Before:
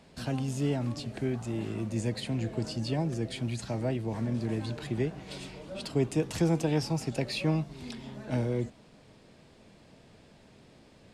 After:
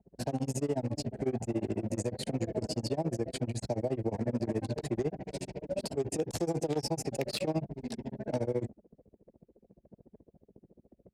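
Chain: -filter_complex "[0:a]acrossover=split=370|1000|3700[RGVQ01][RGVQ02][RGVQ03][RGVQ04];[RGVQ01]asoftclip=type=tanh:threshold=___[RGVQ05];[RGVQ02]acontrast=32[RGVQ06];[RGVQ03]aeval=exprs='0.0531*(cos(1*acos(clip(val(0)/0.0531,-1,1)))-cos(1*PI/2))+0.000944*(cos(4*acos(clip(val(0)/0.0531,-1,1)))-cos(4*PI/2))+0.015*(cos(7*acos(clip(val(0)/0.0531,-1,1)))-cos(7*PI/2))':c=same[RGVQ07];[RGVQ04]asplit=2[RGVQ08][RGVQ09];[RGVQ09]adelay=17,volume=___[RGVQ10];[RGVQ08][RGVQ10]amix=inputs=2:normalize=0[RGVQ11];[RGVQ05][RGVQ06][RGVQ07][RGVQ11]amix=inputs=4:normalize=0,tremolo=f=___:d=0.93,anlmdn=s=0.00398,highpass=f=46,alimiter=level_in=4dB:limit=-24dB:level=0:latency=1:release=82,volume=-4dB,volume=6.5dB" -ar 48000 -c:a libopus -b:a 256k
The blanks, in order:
-35.5dB, -4dB, 14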